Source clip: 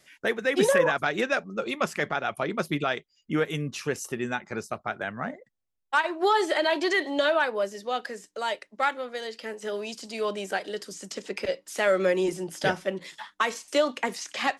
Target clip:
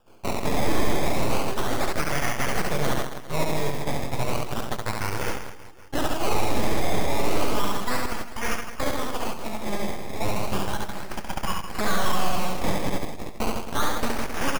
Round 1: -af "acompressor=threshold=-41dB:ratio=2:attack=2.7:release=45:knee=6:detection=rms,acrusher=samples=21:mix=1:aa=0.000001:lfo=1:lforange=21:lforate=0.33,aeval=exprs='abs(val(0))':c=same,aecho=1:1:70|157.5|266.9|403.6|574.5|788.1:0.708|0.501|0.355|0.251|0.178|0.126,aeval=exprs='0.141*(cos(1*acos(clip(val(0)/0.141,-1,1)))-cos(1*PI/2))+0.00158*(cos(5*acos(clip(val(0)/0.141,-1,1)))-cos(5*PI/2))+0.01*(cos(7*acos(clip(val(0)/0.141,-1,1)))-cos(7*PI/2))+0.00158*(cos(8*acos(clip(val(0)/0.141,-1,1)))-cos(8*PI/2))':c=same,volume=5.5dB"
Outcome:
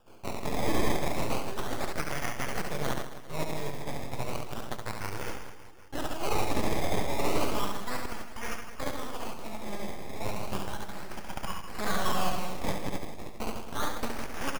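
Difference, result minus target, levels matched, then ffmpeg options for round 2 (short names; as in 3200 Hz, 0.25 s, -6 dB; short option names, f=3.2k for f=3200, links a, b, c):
compressor: peak gain reduction +6 dB
-af "acompressor=threshold=-29.5dB:ratio=2:attack=2.7:release=45:knee=6:detection=rms,acrusher=samples=21:mix=1:aa=0.000001:lfo=1:lforange=21:lforate=0.33,aeval=exprs='abs(val(0))':c=same,aecho=1:1:70|157.5|266.9|403.6|574.5|788.1:0.708|0.501|0.355|0.251|0.178|0.126,aeval=exprs='0.141*(cos(1*acos(clip(val(0)/0.141,-1,1)))-cos(1*PI/2))+0.00158*(cos(5*acos(clip(val(0)/0.141,-1,1)))-cos(5*PI/2))+0.01*(cos(7*acos(clip(val(0)/0.141,-1,1)))-cos(7*PI/2))+0.00158*(cos(8*acos(clip(val(0)/0.141,-1,1)))-cos(8*PI/2))':c=same,volume=5.5dB"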